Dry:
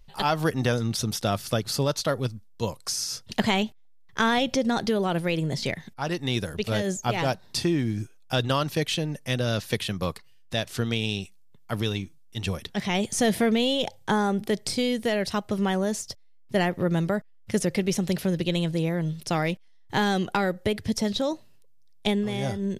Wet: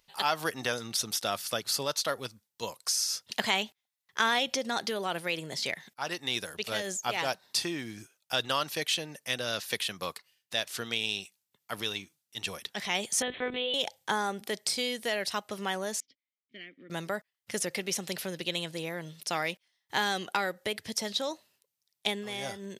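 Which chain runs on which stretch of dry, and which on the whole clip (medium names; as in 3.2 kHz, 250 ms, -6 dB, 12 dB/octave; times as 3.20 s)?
13.22–13.74 s: band-stop 850 Hz, Q 6.9 + monotone LPC vocoder at 8 kHz 250 Hz
16.00–16.90 s: vowel filter i + distance through air 130 m
whole clip: high-pass 1.1 kHz 6 dB/octave; treble shelf 12 kHz +4 dB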